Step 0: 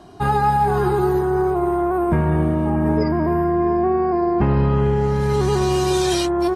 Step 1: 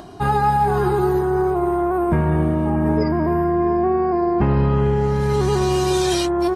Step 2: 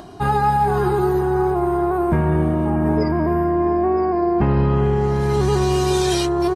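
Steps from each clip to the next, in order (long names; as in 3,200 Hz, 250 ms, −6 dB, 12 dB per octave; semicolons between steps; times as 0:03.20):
upward compression, threshold −33 dBFS
single-tap delay 968 ms −15 dB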